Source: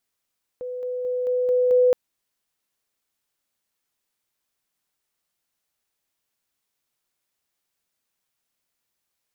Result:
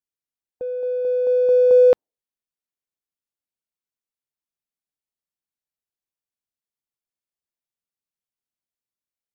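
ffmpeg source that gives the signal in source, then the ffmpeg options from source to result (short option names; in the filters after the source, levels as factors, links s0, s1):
-f lavfi -i "aevalsrc='pow(10,(-28.5+3*floor(t/0.22))/20)*sin(2*PI*499*t)':d=1.32:s=44100"
-filter_complex "[0:a]afftdn=nr=17:nf=-47,asplit=2[s0][s1];[s1]adynamicsmooth=sensitivity=6.5:basefreq=780,volume=0.841[s2];[s0][s2]amix=inputs=2:normalize=0"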